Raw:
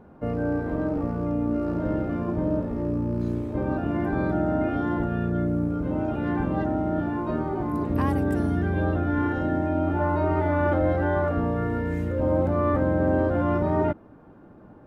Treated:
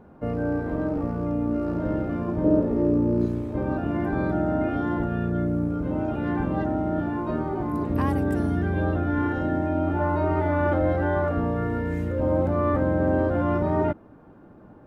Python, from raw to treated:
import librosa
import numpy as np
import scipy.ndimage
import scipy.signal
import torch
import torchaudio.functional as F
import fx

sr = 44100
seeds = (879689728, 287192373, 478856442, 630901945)

y = fx.peak_eq(x, sr, hz=390.0, db=9.0, octaves=1.4, at=(2.44, 3.26))